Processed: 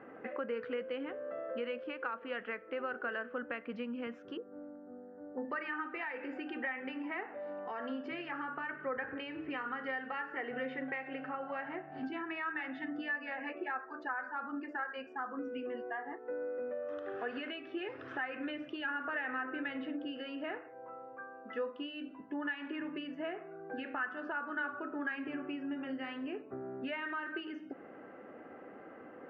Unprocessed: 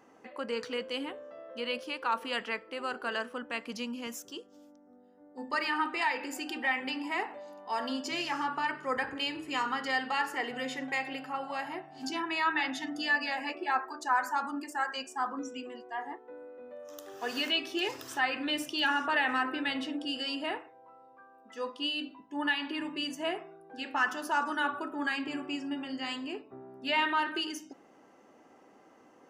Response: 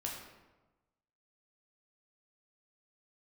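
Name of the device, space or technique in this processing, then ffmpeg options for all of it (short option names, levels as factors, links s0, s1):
bass amplifier: -filter_complex "[0:a]asettb=1/sr,asplit=3[s0][s1][s2];[s0]atrim=end=4.374[s3];[s1]atrim=start=4.37:end=5.45,asetpts=PTS-STARTPTS,afade=t=in:d=0.004:c=qsin,afade=t=out:st=1.076:d=0.004:c=qsin,lowpass=f=1600:w=0.5412,lowpass=f=1600:w=1.3066[s4];[s2]atrim=start=5.446[s5];[s3][s4]acrossfade=d=0.004:c1=hsin:c2=qsin[s6];[s6][s5]acrossfade=d=0.004:c1=qsin:c2=hsin,acompressor=threshold=0.00501:ratio=4,highpass=74,equalizer=f=80:t=q:w=4:g=6,equalizer=f=510:t=q:w=4:g=4,equalizer=f=940:t=q:w=4:g=-8,equalizer=f=1500:t=q:w=4:g=5,lowpass=f=2300:w=0.5412,lowpass=f=2300:w=1.3066,volume=2.37"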